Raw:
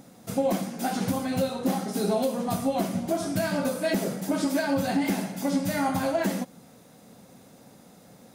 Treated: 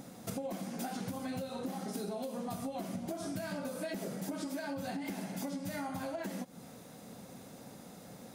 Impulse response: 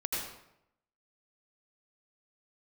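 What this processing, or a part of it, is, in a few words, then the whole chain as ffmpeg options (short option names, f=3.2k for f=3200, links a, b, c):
serial compression, leveller first: -af "acompressor=threshold=-28dB:ratio=2.5,acompressor=threshold=-38dB:ratio=5,volume=1dB"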